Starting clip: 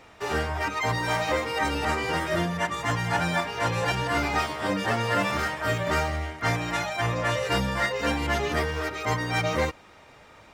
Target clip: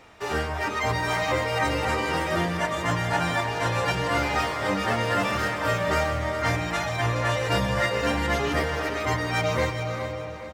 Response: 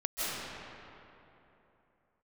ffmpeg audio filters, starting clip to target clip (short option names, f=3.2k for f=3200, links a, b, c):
-filter_complex "[0:a]aecho=1:1:417|834|1251|1668:0.282|0.093|0.0307|0.0101,asplit=2[a][b];[1:a]atrim=start_sample=2205,adelay=137[c];[b][c]afir=irnorm=-1:irlink=0,volume=-15.5dB[d];[a][d]amix=inputs=2:normalize=0"